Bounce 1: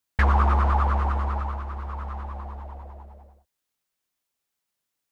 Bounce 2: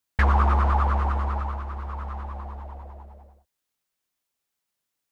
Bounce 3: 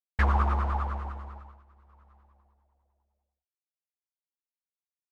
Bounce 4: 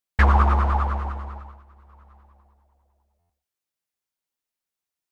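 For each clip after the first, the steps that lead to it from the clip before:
no audible change
upward expansion 2.5:1, over -37 dBFS; trim -3 dB
buffer glitch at 3.19 s, samples 512, times 8; trim +7.5 dB

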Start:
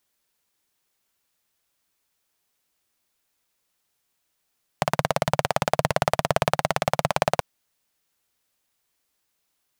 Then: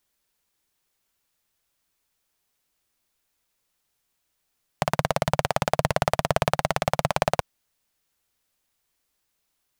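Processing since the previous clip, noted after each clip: bass shelf 70 Hz +8.5 dB; trim -1 dB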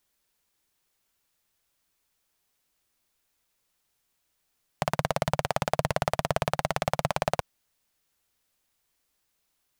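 peak limiter -7.5 dBFS, peak gain reduction 5.5 dB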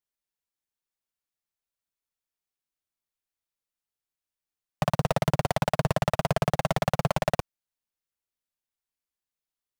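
waveshaping leveller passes 5; trim -7.5 dB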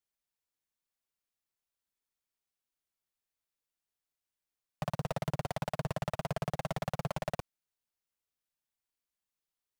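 peak limiter -25.5 dBFS, peak gain reduction 10.5 dB; trim -1 dB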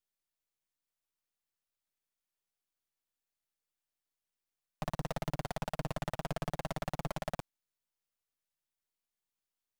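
partial rectifier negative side -12 dB; trim +1.5 dB

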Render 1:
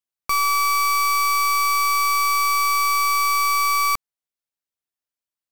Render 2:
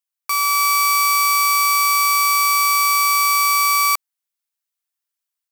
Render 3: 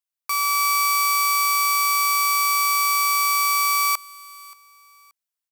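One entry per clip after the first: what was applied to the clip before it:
high-pass 880 Hz 12 dB/octave; treble shelf 7.1 kHz +6 dB; level rider gain up to 3.5 dB
feedback delay 578 ms, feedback 31%, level -22 dB; trim -3.5 dB

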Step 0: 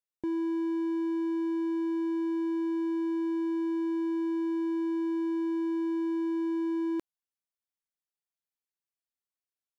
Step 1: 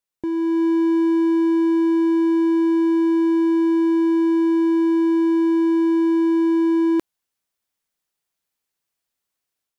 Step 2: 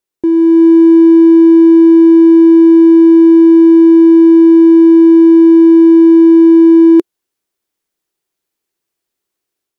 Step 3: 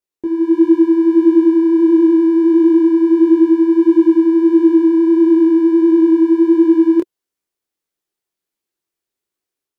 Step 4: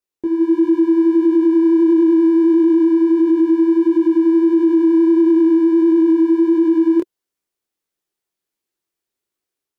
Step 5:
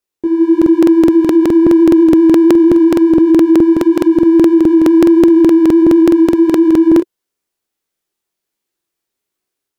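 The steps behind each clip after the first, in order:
level rider gain up to 6 dB; trim +6.5 dB
peaking EQ 360 Hz +11.5 dB 0.66 oct; trim +3.5 dB
detune thickener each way 52 cents; trim -2.5 dB
peak limiter -8 dBFS, peak gain reduction 5.5 dB
crackling interface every 0.21 s, samples 2048, repeat, from 0.57 s; trim +5 dB

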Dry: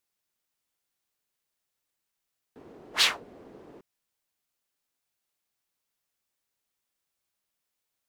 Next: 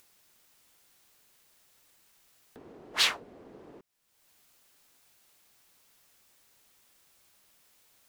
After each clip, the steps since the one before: upward compressor, threshold -45 dBFS; trim -2 dB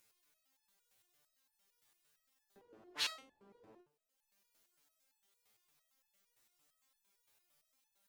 band-passed feedback delay 78 ms, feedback 78%, band-pass 540 Hz, level -23.5 dB; resonator arpeggio 8.8 Hz 110–860 Hz

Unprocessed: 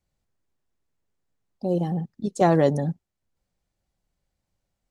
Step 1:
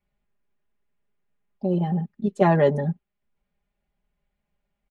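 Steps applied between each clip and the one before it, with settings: resonant high shelf 3.8 kHz -12 dB, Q 1.5; comb 4.9 ms, depth 80%; trim -1.5 dB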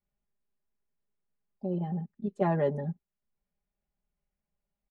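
treble shelf 2.4 kHz -9 dB; trim -8.5 dB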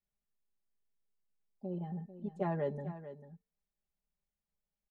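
feedback comb 450 Hz, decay 0.38 s, mix 60%; delay 444 ms -13 dB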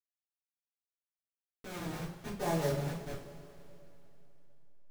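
send-on-delta sampling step -36 dBFS; two-slope reverb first 0.37 s, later 3.1 s, from -18 dB, DRR -9.5 dB; trim -5.5 dB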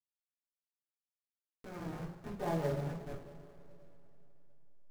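median filter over 15 samples; trim -2 dB

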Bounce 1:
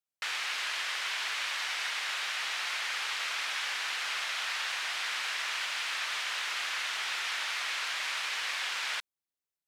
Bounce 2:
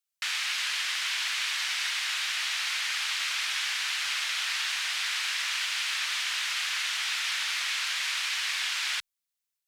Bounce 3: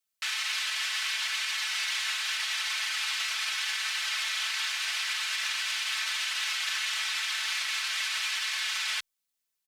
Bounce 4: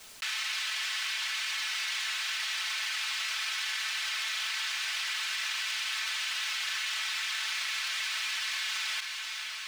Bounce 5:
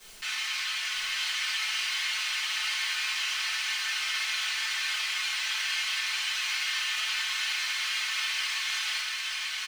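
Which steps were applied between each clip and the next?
amplifier tone stack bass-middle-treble 10-0-10; trim +7 dB
peak limiter -24.5 dBFS, peak gain reduction 6.5 dB; comb 4.6 ms, depth 95%
median filter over 3 samples; echo that smears into a reverb 502 ms, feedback 45%, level -15.5 dB; level flattener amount 70%; trim -3 dB
delay 890 ms -4 dB; simulated room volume 45 m³, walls mixed, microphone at 1.3 m; trim -6 dB

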